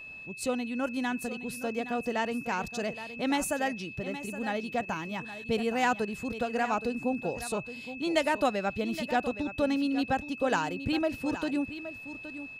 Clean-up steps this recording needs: notch 2600 Hz, Q 30; inverse comb 0.819 s -12.5 dB

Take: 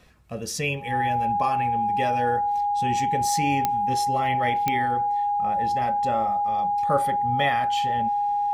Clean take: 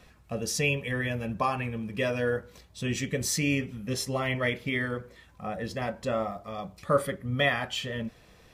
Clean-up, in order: de-click; notch 820 Hz, Q 30

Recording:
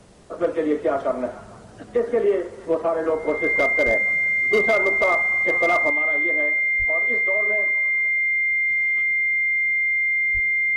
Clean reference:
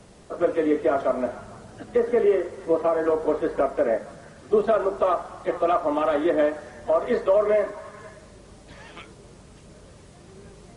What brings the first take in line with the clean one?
clip repair -12 dBFS; notch 2100 Hz, Q 30; de-plosive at 3.85/6.78/10.33; gain correction +9.5 dB, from 5.9

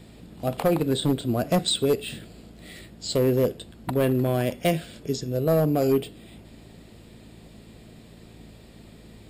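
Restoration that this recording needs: clip repair -15 dBFS; de-click; de-hum 55 Hz, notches 4

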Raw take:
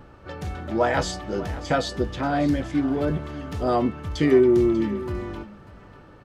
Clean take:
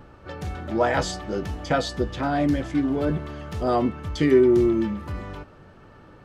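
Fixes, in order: inverse comb 0.592 s -16 dB

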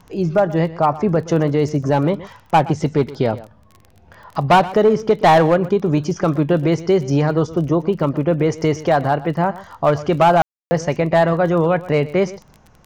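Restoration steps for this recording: de-click; room tone fill 10.42–10.71; inverse comb 0.122 s -17.5 dB

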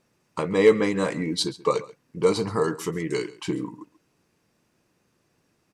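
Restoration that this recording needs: clip repair -7.5 dBFS; inverse comb 0.135 s -19.5 dB

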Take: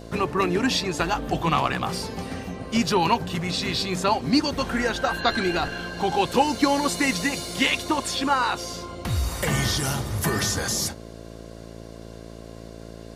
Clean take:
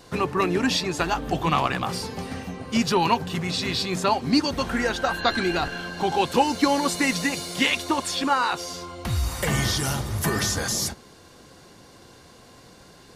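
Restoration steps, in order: de-hum 56.1 Hz, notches 12

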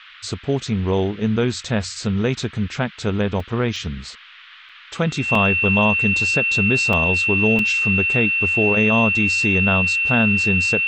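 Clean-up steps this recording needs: notch 2700 Hz, Q 30; interpolate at 3.4/3.76/4.69/5.35/6.93/7.59, 3.1 ms; noise print and reduce 22 dB

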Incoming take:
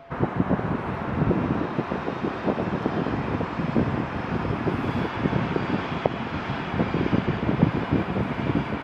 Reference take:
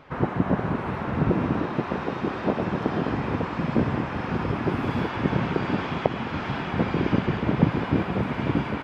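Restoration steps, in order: notch 680 Hz, Q 30

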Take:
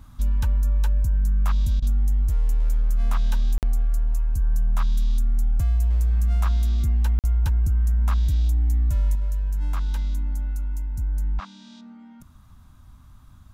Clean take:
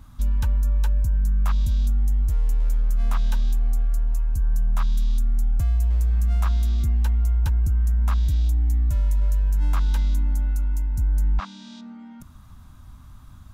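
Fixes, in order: interpolate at 3.58/7.19, 48 ms; interpolate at 1.8, 21 ms; gain correction +4 dB, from 9.15

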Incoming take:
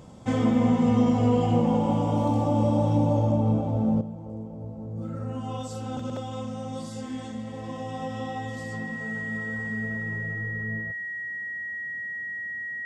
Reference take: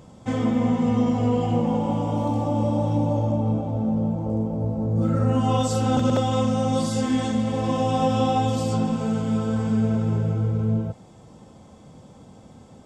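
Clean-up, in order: notch 1900 Hz, Q 30; gain correction +12 dB, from 4.01

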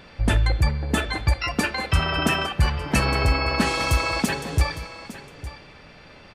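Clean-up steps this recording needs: inverse comb 0.858 s -15 dB

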